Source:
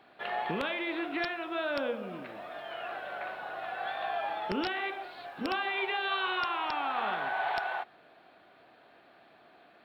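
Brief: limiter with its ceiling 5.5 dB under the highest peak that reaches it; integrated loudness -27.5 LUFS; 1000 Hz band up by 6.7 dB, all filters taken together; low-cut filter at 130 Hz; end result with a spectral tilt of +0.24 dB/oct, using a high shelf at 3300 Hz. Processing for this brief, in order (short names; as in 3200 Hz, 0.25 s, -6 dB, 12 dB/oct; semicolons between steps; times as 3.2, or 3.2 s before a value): HPF 130 Hz; bell 1000 Hz +8.5 dB; high shelf 3300 Hz +6.5 dB; gain +2.5 dB; limiter -17 dBFS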